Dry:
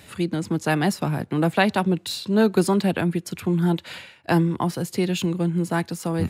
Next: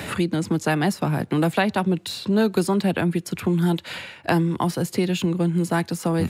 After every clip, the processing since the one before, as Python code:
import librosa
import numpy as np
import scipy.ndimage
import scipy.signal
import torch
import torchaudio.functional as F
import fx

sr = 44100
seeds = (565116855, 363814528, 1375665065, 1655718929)

y = fx.band_squash(x, sr, depth_pct=70)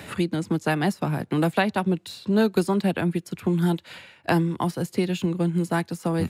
y = fx.upward_expand(x, sr, threshold_db=-35.0, expansion=1.5)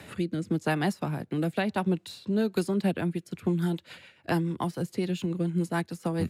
y = fx.rotary_switch(x, sr, hz=0.9, then_hz=7.0, switch_at_s=2.24)
y = y * librosa.db_to_amplitude(-3.0)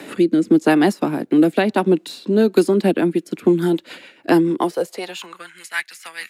y = fx.filter_sweep_highpass(x, sr, from_hz=290.0, to_hz=2000.0, start_s=4.5, end_s=5.62, q=2.7)
y = y * librosa.db_to_amplitude(9.0)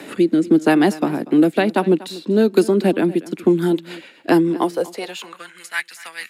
y = x + 10.0 ** (-19.0 / 20.0) * np.pad(x, (int(241 * sr / 1000.0), 0))[:len(x)]